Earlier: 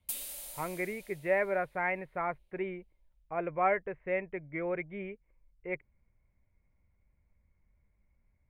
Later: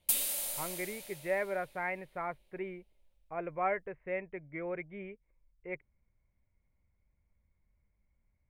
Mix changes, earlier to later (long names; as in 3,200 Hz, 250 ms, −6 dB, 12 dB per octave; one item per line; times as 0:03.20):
speech −4.0 dB
background +8.0 dB